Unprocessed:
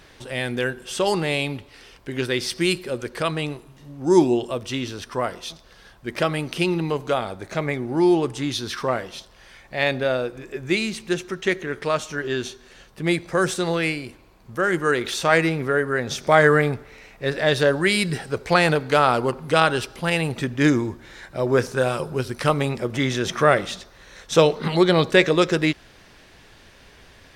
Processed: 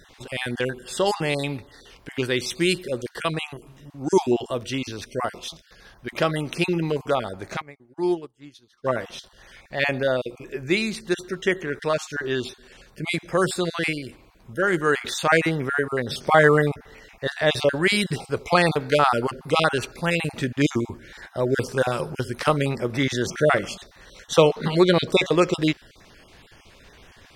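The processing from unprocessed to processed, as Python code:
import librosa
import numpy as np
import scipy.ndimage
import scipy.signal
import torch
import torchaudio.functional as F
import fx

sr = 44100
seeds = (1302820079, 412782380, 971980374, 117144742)

y = fx.spec_dropout(x, sr, seeds[0], share_pct=23)
y = fx.upward_expand(y, sr, threshold_db=-36.0, expansion=2.5, at=(7.6, 8.84), fade=0.02)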